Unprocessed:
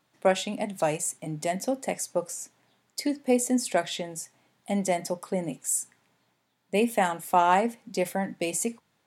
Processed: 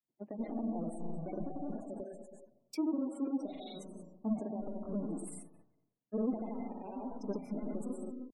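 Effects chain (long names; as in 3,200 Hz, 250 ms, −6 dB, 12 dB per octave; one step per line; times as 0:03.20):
each half-wave held at its own peak
downward compressor 16 to 1, threshold −26 dBFS, peak gain reduction 14.5 dB
convolution reverb RT60 1.2 s, pre-delay 105 ms, DRR 2.5 dB
granular cloud, pitch spread up and down by 0 semitones
wrong playback speed 44.1 kHz file played as 48 kHz
brickwall limiter −24.5 dBFS, peak gain reduction 10 dB
flat-topped bell 500 Hz +8.5 dB 2.8 octaves
gate on every frequency bin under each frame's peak −20 dB strong
drawn EQ curve 120 Hz 0 dB, 1,400 Hz −20 dB, 2,100 Hz −7 dB, 5,500 Hz −14 dB
multiband upward and downward expander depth 70%
level −3.5 dB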